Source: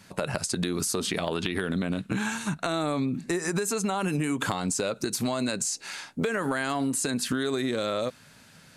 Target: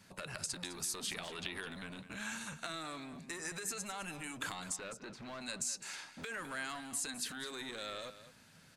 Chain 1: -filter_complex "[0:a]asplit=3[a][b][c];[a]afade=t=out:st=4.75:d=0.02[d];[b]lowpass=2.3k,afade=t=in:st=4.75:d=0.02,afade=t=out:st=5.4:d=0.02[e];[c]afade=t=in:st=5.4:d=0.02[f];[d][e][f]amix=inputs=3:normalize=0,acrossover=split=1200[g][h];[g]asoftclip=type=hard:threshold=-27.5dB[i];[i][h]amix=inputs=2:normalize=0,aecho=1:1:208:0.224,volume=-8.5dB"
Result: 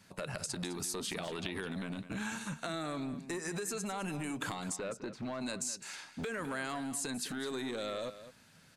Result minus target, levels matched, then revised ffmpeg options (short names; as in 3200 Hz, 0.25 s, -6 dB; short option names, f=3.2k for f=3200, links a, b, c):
hard clip: distortion -7 dB
-filter_complex "[0:a]asplit=3[a][b][c];[a]afade=t=out:st=4.75:d=0.02[d];[b]lowpass=2.3k,afade=t=in:st=4.75:d=0.02,afade=t=out:st=5.4:d=0.02[e];[c]afade=t=in:st=5.4:d=0.02[f];[d][e][f]amix=inputs=3:normalize=0,acrossover=split=1200[g][h];[g]asoftclip=type=hard:threshold=-39dB[i];[i][h]amix=inputs=2:normalize=0,aecho=1:1:208:0.224,volume=-8.5dB"